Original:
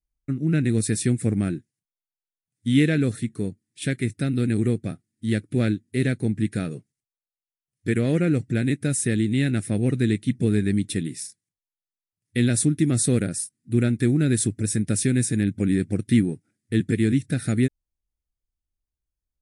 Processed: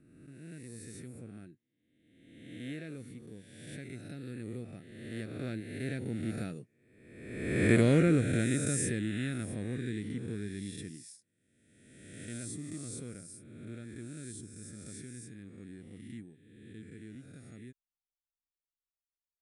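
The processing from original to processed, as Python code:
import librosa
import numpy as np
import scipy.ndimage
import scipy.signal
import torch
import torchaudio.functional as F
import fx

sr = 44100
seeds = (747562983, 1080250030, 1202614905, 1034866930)

y = fx.spec_swells(x, sr, rise_s=1.39)
y = fx.doppler_pass(y, sr, speed_mps=8, closest_m=3.6, pass_at_s=7.71)
y = y * librosa.db_to_amplitude(-3.0)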